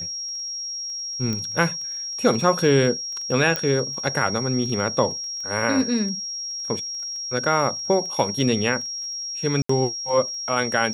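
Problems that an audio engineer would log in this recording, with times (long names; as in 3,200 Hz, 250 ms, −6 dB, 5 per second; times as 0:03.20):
surface crackle 12 per second −31 dBFS
whistle 5,600 Hz −28 dBFS
0:01.33: click −15 dBFS
0:03.56: click −9 dBFS
0:09.62–0:09.69: drop-out 74 ms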